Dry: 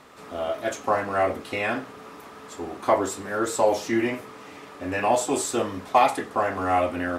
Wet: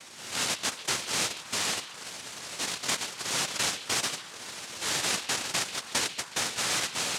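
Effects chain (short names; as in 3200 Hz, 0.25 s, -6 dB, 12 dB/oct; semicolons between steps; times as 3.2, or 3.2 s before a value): transient shaper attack -4 dB, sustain -8 dB; compressor 12:1, threshold -29 dBFS, peak gain reduction 15 dB; noise vocoder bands 1; delay with a stepping band-pass 0.139 s, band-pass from 3200 Hz, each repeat -1.4 oct, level -10.5 dB; gain +3 dB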